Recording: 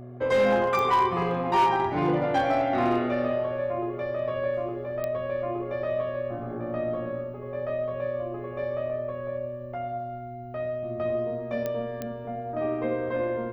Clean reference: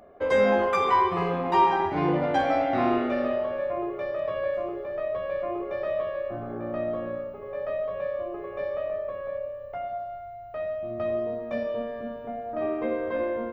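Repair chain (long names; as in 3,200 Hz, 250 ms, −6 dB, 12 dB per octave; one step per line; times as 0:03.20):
clipped peaks rebuilt −16.5 dBFS
click removal
hum removal 123 Hz, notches 3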